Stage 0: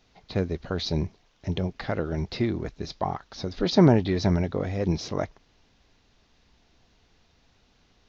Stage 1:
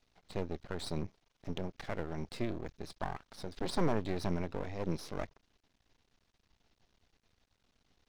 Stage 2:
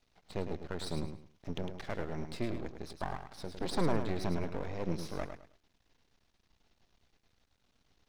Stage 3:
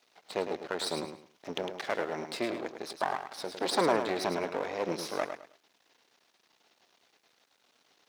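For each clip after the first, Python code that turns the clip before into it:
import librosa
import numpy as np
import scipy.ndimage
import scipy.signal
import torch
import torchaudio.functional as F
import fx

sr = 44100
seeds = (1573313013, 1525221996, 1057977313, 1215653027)

y1 = np.maximum(x, 0.0)
y1 = y1 * librosa.db_to_amplitude(-7.0)
y2 = fx.echo_feedback(y1, sr, ms=106, feedback_pct=25, wet_db=-8)
y3 = scipy.signal.sosfilt(scipy.signal.butter(2, 410.0, 'highpass', fs=sr, output='sos'), y2)
y3 = y3 * librosa.db_to_amplitude(9.0)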